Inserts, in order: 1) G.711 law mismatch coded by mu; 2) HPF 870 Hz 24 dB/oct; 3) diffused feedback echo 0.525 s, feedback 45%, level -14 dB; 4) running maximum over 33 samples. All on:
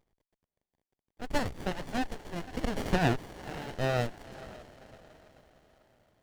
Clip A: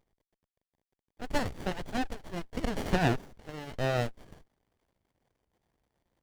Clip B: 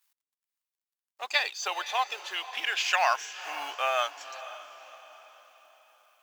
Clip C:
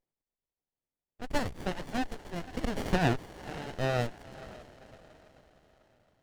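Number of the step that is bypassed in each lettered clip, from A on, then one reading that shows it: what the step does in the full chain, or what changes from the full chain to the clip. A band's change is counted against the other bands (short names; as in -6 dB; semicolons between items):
3, momentary loudness spread change -5 LU; 4, crest factor change +2.0 dB; 1, distortion -28 dB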